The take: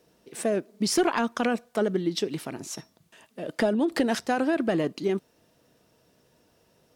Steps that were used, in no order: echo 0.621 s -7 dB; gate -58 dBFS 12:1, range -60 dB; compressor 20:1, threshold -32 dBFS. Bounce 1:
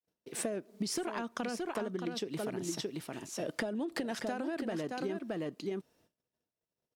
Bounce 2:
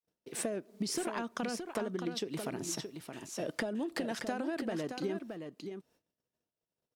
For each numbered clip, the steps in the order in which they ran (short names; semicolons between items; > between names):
gate > echo > compressor; compressor > gate > echo